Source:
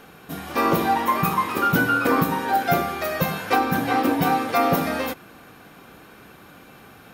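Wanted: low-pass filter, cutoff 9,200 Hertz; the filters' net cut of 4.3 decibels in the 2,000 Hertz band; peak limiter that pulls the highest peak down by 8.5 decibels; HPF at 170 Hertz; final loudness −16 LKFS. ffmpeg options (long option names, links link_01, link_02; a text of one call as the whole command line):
ffmpeg -i in.wav -af "highpass=170,lowpass=9200,equalizer=frequency=2000:width_type=o:gain=-6.5,volume=11dB,alimiter=limit=-6.5dB:level=0:latency=1" out.wav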